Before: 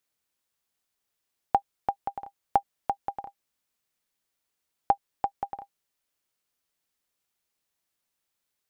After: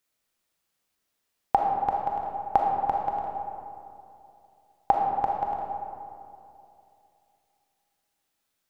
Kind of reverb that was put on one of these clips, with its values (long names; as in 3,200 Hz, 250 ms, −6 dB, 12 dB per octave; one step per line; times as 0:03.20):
comb and all-pass reverb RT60 2.7 s, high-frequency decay 0.45×, pre-delay 0 ms, DRR −1 dB
level +1.5 dB